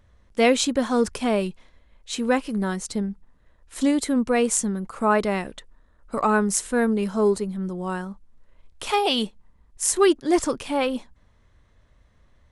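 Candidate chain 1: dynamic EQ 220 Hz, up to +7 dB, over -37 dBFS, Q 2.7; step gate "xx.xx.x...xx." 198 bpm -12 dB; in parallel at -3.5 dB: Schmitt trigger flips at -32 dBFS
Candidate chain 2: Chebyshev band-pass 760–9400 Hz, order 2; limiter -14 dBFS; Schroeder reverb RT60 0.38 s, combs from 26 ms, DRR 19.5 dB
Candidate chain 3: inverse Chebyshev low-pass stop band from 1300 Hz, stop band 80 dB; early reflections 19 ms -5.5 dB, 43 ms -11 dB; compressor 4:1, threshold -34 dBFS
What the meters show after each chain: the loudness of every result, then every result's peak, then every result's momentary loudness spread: -21.0, -29.5, -38.5 LUFS; -3.5, -13.5, -26.5 dBFS; 9, 14, 11 LU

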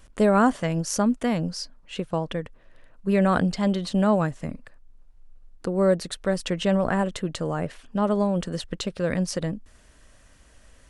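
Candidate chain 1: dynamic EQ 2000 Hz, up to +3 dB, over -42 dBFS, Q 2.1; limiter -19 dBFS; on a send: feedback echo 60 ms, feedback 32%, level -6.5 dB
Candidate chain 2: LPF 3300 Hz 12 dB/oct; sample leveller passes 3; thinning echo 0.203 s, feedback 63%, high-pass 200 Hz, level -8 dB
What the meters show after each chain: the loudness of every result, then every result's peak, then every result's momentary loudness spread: -29.0, -17.5 LUFS; -15.5, -6.0 dBFS; 9, 13 LU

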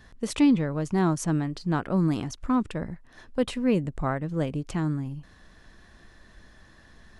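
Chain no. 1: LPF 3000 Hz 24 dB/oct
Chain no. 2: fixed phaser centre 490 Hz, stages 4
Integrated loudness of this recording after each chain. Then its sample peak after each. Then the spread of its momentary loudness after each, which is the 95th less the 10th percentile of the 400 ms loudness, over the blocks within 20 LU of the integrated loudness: -27.0, -32.5 LUFS; -11.0, -15.5 dBFS; 13, 11 LU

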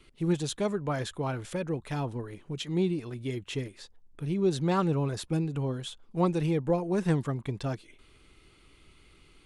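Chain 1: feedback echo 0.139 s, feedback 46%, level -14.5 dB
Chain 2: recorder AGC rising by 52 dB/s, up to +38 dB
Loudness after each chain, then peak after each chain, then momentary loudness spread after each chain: -30.5, -29.5 LUFS; -14.5, -3.5 dBFS; 11, 6 LU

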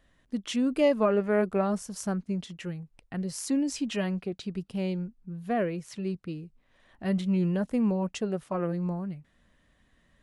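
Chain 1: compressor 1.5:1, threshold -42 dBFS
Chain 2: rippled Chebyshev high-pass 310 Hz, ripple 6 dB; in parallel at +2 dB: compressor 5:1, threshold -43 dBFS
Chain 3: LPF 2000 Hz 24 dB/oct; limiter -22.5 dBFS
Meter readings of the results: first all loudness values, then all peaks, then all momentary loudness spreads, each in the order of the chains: -36.5, -34.5, -33.0 LUFS; -20.0, -15.5, -22.5 dBFS; 10, 15, 9 LU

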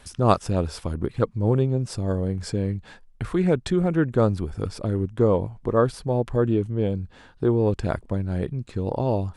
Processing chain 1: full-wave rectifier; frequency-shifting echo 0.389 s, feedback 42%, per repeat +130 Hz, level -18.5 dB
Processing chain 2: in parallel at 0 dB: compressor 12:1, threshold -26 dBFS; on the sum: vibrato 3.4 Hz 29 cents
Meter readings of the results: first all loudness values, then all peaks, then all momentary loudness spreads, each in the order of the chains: -28.5, -22.0 LUFS; -3.5, -2.0 dBFS; 7, 6 LU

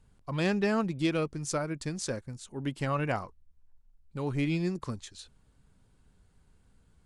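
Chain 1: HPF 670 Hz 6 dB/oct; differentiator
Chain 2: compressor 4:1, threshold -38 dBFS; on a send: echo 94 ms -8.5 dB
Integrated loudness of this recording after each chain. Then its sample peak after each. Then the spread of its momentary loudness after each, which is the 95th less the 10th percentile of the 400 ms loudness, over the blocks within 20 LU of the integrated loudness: -45.5, -41.0 LUFS; -17.0, -22.0 dBFS; 14, 6 LU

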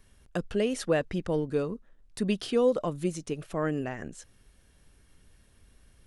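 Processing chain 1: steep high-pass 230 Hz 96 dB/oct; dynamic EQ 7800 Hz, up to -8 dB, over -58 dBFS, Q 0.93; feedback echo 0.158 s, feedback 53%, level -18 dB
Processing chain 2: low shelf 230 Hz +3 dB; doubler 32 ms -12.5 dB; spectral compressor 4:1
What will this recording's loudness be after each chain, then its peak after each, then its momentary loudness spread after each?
-31.0, -34.5 LUFS; -14.0, -12.0 dBFS; 14, 17 LU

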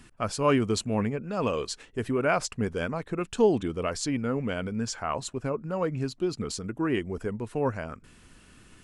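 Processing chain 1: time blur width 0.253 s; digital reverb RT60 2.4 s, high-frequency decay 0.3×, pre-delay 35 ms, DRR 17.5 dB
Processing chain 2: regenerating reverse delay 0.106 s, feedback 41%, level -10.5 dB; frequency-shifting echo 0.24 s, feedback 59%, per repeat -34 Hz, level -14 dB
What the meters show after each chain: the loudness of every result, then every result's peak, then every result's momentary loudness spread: -33.5, -28.5 LUFS; -16.5, -10.5 dBFS; 8, 9 LU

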